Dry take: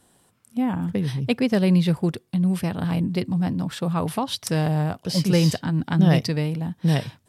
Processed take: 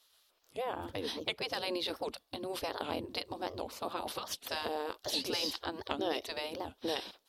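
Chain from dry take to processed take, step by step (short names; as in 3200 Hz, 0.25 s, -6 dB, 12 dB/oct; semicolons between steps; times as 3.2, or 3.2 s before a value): spectral gate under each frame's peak -15 dB weak; graphic EQ 125/500/2000/4000/8000 Hz -8/+3/-7/+7/-8 dB; compressor 2.5:1, threshold -33 dBFS, peak gain reduction 8 dB; record warp 78 rpm, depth 250 cents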